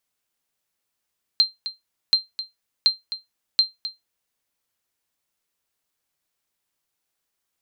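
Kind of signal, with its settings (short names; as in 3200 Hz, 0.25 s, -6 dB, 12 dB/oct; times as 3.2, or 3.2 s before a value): sonar ping 4150 Hz, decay 0.17 s, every 0.73 s, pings 4, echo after 0.26 s, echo -13 dB -8 dBFS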